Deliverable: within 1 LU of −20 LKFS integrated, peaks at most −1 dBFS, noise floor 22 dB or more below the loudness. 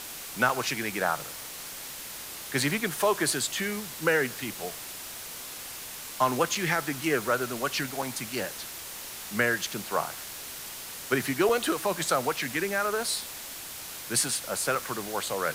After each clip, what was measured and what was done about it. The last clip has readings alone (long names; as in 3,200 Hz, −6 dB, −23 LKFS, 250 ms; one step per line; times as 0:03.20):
number of dropouts 6; longest dropout 3.4 ms; background noise floor −40 dBFS; target noise floor −52 dBFS; integrated loudness −29.5 LKFS; sample peak −10.0 dBFS; target loudness −20.0 LKFS
→ repair the gap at 0:00.49/0:01.00/0:06.55/0:08.02/0:11.49/0:14.75, 3.4 ms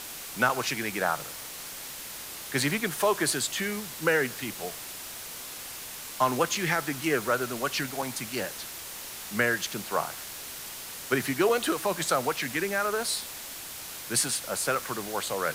number of dropouts 0; background noise floor −40 dBFS; target noise floor −52 dBFS
→ broadband denoise 12 dB, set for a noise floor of −40 dBFS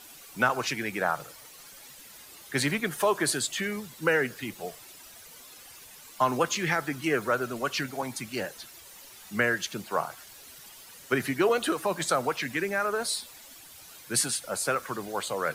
background noise floor −49 dBFS; target noise floor −51 dBFS
→ broadband denoise 6 dB, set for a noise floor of −49 dBFS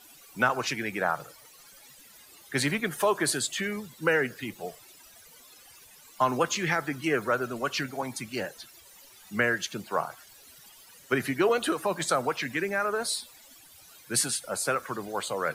background noise floor −54 dBFS; integrated loudness −28.5 LKFS; sample peak −10.5 dBFS; target loudness −20.0 LKFS
→ level +8.5 dB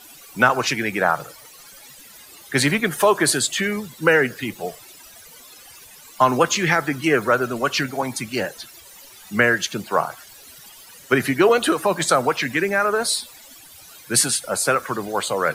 integrated loudness −20.0 LKFS; sample peak −2.0 dBFS; background noise floor −45 dBFS